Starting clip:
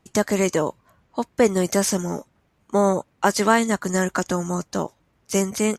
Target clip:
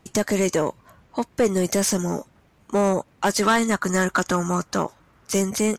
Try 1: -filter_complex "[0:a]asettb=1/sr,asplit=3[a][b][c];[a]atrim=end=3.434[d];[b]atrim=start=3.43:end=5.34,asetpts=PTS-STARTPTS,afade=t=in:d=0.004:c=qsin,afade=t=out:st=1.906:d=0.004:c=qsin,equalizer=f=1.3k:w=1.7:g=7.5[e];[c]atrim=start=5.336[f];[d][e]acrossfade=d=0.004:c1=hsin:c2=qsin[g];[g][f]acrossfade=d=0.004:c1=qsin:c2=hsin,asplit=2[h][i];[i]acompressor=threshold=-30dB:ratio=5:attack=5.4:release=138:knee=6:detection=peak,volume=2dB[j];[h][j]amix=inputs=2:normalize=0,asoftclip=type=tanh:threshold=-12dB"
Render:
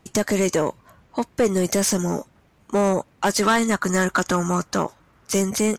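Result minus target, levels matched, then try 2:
compressor: peak gain reduction -6 dB
-filter_complex "[0:a]asettb=1/sr,asplit=3[a][b][c];[a]atrim=end=3.434[d];[b]atrim=start=3.43:end=5.34,asetpts=PTS-STARTPTS,afade=t=in:d=0.004:c=qsin,afade=t=out:st=1.906:d=0.004:c=qsin,equalizer=f=1.3k:w=1.7:g=7.5[e];[c]atrim=start=5.336[f];[d][e]acrossfade=d=0.004:c1=hsin:c2=qsin[g];[g][f]acrossfade=d=0.004:c1=qsin:c2=hsin,asplit=2[h][i];[i]acompressor=threshold=-37.5dB:ratio=5:attack=5.4:release=138:knee=6:detection=peak,volume=2dB[j];[h][j]amix=inputs=2:normalize=0,asoftclip=type=tanh:threshold=-12dB"

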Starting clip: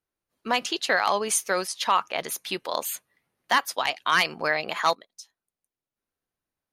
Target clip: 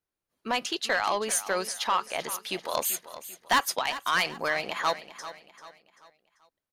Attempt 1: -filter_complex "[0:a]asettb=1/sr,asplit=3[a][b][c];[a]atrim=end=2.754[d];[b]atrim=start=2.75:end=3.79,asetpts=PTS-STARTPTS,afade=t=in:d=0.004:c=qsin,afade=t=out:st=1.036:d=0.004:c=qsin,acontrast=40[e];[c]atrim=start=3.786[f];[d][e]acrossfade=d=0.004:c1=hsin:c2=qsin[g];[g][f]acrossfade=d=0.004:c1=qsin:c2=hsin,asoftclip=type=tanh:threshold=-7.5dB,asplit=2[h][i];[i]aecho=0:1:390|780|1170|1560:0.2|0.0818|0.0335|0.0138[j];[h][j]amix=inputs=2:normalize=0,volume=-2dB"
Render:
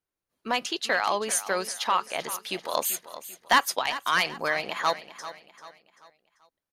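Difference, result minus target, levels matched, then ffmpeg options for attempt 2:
soft clip: distortion -9 dB
-filter_complex "[0:a]asettb=1/sr,asplit=3[a][b][c];[a]atrim=end=2.754[d];[b]atrim=start=2.75:end=3.79,asetpts=PTS-STARTPTS,afade=t=in:d=0.004:c=qsin,afade=t=out:st=1.036:d=0.004:c=qsin,acontrast=40[e];[c]atrim=start=3.786[f];[d][e]acrossfade=d=0.004:c1=hsin:c2=qsin[g];[g][f]acrossfade=d=0.004:c1=qsin:c2=hsin,asoftclip=type=tanh:threshold=-14.5dB,asplit=2[h][i];[i]aecho=0:1:390|780|1170|1560:0.2|0.0818|0.0335|0.0138[j];[h][j]amix=inputs=2:normalize=0,volume=-2dB"

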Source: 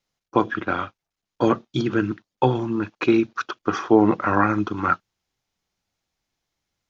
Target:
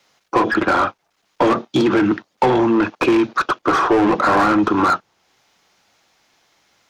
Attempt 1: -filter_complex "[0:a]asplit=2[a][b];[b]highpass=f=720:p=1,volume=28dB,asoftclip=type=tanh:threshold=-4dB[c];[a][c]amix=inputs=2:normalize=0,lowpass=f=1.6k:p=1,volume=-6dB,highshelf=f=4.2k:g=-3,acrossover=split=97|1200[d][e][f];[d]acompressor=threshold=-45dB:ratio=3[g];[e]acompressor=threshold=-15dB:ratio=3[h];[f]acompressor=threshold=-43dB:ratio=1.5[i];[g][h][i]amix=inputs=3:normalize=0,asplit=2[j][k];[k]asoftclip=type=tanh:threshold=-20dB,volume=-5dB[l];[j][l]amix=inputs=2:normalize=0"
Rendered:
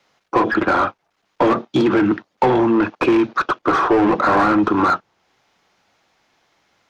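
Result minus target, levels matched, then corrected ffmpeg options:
8000 Hz band -6.0 dB
-filter_complex "[0:a]asplit=2[a][b];[b]highpass=f=720:p=1,volume=28dB,asoftclip=type=tanh:threshold=-4dB[c];[a][c]amix=inputs=2:normalize=0,lowpass=f=1.6k:p=1,volume=-6dB,highshelf=f=4.2k:g=7,acrossover=split=97|1200[d][e][f];[d]acompressor=threshold=-45dB:ratio=3[g];[e]acompressor=threshold=-15dB:ratio=3[h];[f]acompressor=threshold=-43dB:ratio=1.5[i];[g][h][i]amix=inputs=3:normalize=0,asplit=2[j][k];[k]asoftclip=type=tanh:threshold=-20dB,volume=-5dB[l];[j][l]amix=inputs=2:normalize=0"

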